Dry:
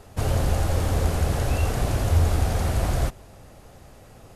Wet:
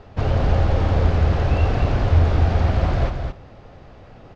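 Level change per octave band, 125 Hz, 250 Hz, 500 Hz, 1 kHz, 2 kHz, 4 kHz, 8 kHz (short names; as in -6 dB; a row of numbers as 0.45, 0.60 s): +5.0 dB, +4.5 dB, +4.5 dB, +4.0 dB, +3.5 dB, 0.0 dB, under -10 dB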